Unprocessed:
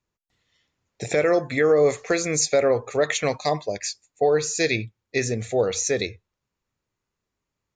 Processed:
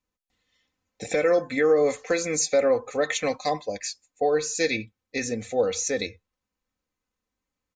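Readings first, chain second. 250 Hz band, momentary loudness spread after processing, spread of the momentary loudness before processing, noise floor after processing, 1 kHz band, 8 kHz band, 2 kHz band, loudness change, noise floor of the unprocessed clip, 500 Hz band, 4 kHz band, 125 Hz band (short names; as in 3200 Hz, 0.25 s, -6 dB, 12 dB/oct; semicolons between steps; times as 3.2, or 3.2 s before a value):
-2.0 dB, 10 LU, 9 LU, under -85 dBFS, -1.5 dB, -2.5 dB, -2.5 dB, -2.5 dB, -84 dBFS, -2.0 dB, -3.0 dB, -9.5 dB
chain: comb 3.9 ms, depth 64%; gain -4 dB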